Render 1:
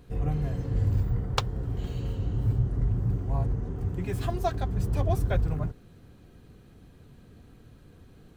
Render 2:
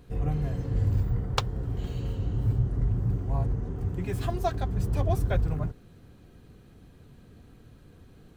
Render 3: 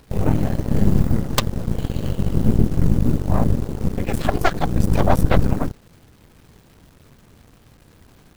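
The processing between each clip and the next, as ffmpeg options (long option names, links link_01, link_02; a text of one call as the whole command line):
ffmpeg -i in.wav -af anull out.wav
ffmpeg -i in.wav -af "acrusher=bits=8:mix=0:aa=0.000001,aeval=exprs='0.376*(cos(1*acos(clip(val(0)/0.376,-1,1)))-cos(1*PI/2))+0.0266*(cos(5*acos(clip(val(0)/0.376,-1,1)))-cos(5*PI/2))+0.0299*(cos(7*acos(clip(val(0)/0.376,-1,1)))-cos(7*PI/2))+0.168*(cos(8*acos(clip(val(0)/0.376,-1,1)))-cos(8*PI/2))':channel_layout=same,volume=3dB" out.wav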